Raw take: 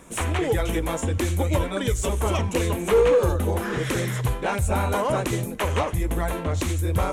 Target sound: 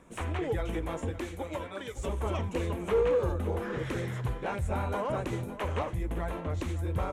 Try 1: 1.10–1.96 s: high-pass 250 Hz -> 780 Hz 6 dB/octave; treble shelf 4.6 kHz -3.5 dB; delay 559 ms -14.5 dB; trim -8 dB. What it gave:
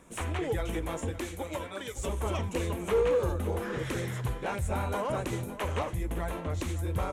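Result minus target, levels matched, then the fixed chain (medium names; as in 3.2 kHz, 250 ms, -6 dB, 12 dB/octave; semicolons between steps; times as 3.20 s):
8 kHz band +7.0 dB
1.10–1.96 s: high-pass 250 Hz -> 780 Hz 6 dB/octave; treble shelf 4.6 kHz -13 dB; delay 559 ms -14.5 dB; trim -8 dB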